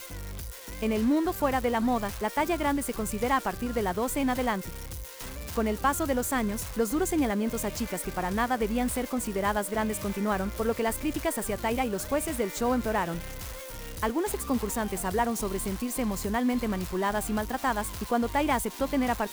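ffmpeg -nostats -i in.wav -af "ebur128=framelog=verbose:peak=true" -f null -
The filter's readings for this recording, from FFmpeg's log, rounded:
Integrated loudness:
  I:         -28.9 LUFS
  Threshold: -39.1 LUFS
Loudness range:
  LRA:         2.0 LU
  Threshold: -49.2 LUFS
  LRA low:   -30.1 LUFS
  LRA high:  -28.1 LUFS
True peak:
  Peak:      -13.2 dBFS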